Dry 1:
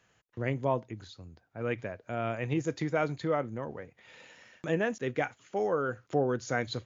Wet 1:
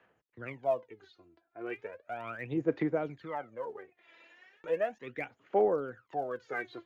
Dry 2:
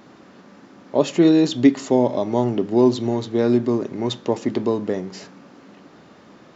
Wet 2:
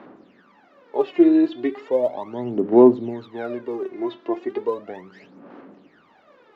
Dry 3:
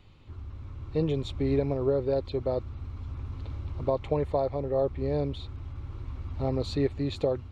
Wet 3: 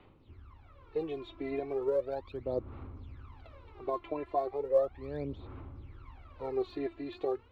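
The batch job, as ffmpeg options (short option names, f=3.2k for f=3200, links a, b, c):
-filter_complex "[0:a]acrossover=split=3600[a][b];[b]acompressor=threshold=-52dB:ratio=4:attack=1:release=60[c];[a][c]amix=inputs=2:normalize=0,acrossover=split=240 3600:gain=0.178 1 0.1[d][e][f];[d][e][f]amix=inputs=3:normalize=0,aphaser=in_gain=1:out_gain=1:delay=3:decay=0.78:speed=0.36:type=sinusoidal,volume=-7dB"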